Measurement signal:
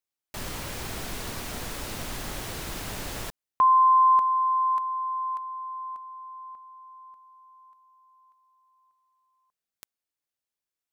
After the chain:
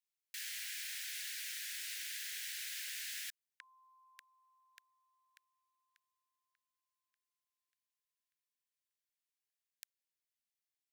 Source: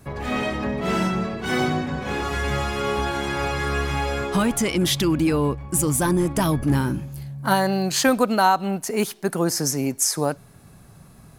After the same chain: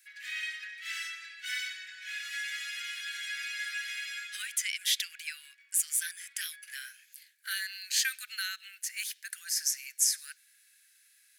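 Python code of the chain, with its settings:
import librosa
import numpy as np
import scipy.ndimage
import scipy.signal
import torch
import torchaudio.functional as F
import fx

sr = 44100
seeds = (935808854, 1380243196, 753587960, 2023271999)

y = scipy.signal.sosfilt(scipy.signal.butter(12, 1600.0, 'highpass', fs=sr, output='sos'), x)
y = F.gain(torch.from_numpy(y), -4.5).numpy()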